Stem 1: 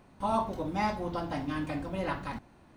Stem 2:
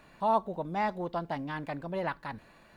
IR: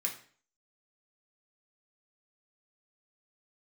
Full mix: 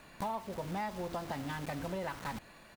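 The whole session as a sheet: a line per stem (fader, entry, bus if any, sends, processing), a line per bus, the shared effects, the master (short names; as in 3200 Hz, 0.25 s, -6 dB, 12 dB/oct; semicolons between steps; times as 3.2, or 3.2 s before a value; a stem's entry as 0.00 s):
-3.5 dB, 0.00 s, no send, bell 3000 Hz -13.5 dB 0.38 oct; companded quantiser 2-bit; auto duck -8 dB, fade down 0.45 s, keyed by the second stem
+1.0 dB, 0.6 ms, polarity flipped, no send, high shelf 4200 Hz +7.5 dB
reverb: off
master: compressor 6:1, threshold -35 dBFS, peak gain reduction 15 dB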